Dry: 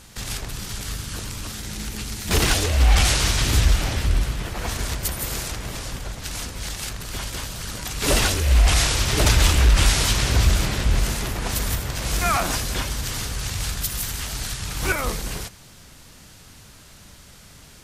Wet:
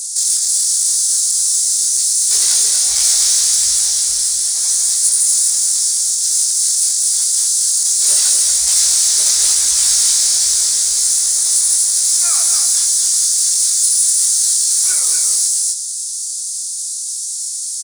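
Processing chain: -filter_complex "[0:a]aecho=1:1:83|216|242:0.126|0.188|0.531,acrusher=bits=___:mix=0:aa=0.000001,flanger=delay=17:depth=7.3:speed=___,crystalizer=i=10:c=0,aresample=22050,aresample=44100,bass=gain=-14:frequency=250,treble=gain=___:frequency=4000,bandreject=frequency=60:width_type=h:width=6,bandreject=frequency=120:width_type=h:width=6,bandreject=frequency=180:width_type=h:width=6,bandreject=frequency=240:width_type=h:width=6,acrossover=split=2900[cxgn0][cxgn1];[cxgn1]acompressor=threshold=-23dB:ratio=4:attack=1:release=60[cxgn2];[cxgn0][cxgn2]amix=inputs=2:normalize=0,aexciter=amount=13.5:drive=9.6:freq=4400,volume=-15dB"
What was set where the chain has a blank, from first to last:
11, 0.82, -3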